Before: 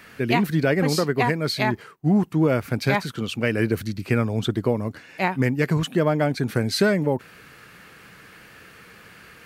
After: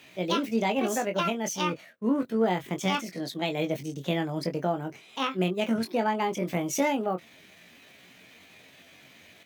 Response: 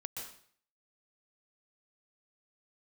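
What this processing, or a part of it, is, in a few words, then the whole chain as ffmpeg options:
chipmunk voice: -filter_complex "[0:a]highpass=49,asetrate=62367,aresample=44100,atempo=0.707107,asplit=2[link_01][link_02];[link_02]adelay=22,volume=-7dB[link_03];[link_01][link_03]amix=inputs=2:normalize=0,volume=-7dB"

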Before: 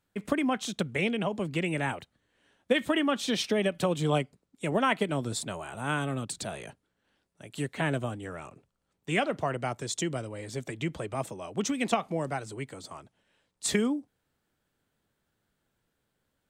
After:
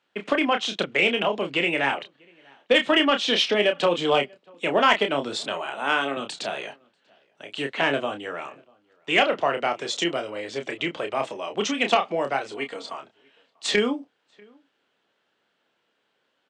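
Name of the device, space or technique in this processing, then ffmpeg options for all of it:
intercom: -filter_complex "[0:a]lowpass=7800,asettb=1/sr,asplit=3[link_01][link_02][link_03];[link_01]atrim=end=5.734[link_04];[link_02]atrim=start=5.73:end=6.17,asetpts=PTS-STARTPTS,afade=type=in:duration=0.004:curve=qsin,afade=type=out:start_time=0.436:duration=0.004:curve=qsin,highpass=230[link_05];[link_03]atrim=start=6.166[link_06];[link_04][link_05]acrossfade=duration=0.004:curve1=hsin:curve2=qsin[link_07];[link_07][link_06]acrossfade=duration=0.004:curve1=qsin:curve2=hsin,asettb=1/sr,asplit=3[link_08][link_09][link_10];[link_08]atrim=end=12.544[link_11];[link_09]atrim=start=12.54:end=12.95,asetpts=PTS-STARTPTS,afade=type=in:duration=0.004:curve=qsin,afade=type=out:start_time=0.406:duration=0.004:curve=qsin,aecho=1:1:4.3:0.58,atrim=end_sample=18081[link_12];[link_10]atrim=start=12.946[link_13];[link_11][link_12]acrossfade=duration=0.004:curve1=hsin:curve2=qsin[link_14];[link_14][link_13]acrossfade=duration=0.004:curve1=qsin:curve2=hsin,highpass=380,lowpass=4800,equalizer=frequency=2900:width_type=o:width=0.45:gain=6,asplit=2[link_15][link_16];[link_16]adelay=641.4,volume=-29dB,highshelf=frequency=4000:gain=-14.4[link_17];[link_15][link_17]amix=inputs=2:normalize=0,asoftclip=type=tanh:threshold=-15.5dB,asplit=2[link_18][link_19];[link_19]adelay=29,volume=-6.5dB[link_20];[link_18][link_20]amix=inputs=2:normalize=0,volume=8dB"

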